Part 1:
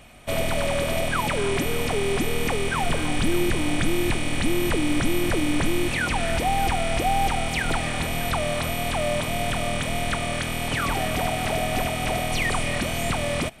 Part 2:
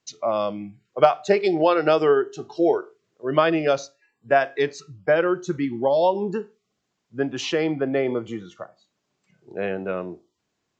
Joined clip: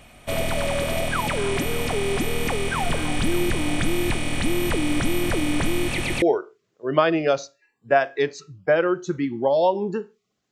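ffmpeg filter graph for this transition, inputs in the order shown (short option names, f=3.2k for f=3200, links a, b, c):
-filter_complex "[0:a]apad=whole_dur=10.51,atrim=end=10.51,asplit=3[a][b][c];[a]atrim=end=5.982[d];[b]atrim=start=5.858:end=5.982[e];[c]atrim=start=5.858:end=5.982[f];[1:a]atrim=start=2.618:end=6.91[g];[d][e]acrossfade=d=0.004:c1=hsin:c2=hsin[h];[h][f]acrossfade=d=0.004:c1=hsin:c2=hsin[i];[i][g]acrossfade=d=0.004:c1=hsin:c2=hsin"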